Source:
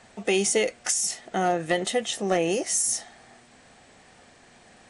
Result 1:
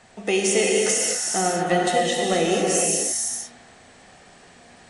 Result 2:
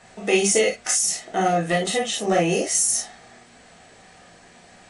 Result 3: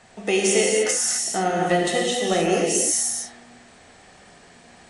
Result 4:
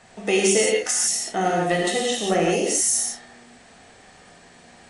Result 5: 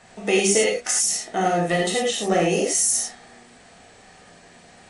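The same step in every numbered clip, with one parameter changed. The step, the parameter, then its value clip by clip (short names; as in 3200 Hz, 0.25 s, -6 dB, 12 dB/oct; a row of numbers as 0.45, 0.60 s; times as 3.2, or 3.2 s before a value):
non-linear reverb, gate: 520, 80, 320, 200, 130 ms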